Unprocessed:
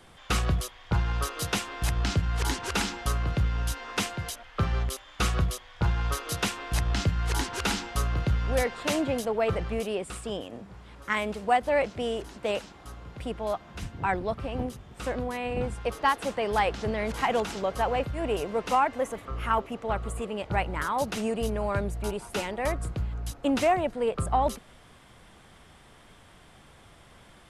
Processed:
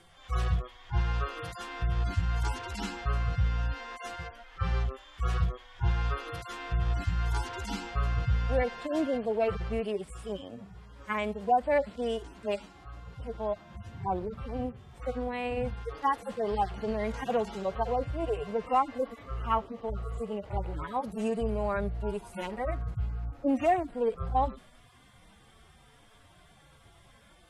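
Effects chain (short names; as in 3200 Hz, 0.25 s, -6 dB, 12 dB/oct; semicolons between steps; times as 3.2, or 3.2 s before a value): median-filter separation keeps harmonic; gain -1 dB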